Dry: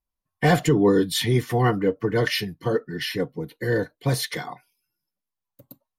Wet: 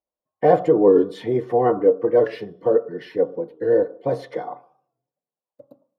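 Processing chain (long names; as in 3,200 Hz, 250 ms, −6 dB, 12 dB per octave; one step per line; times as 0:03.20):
resonant band-pass 480 Hz, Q 0.87
parametric band 590 Hz +11 dB 1.1 octaves
on a send at −11.5 dB: convolution reverb RT60 0.60 s, pre-delay 3 ms
on the sum: wow of a warped record 45 rpm, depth 100 cents
level −1 dB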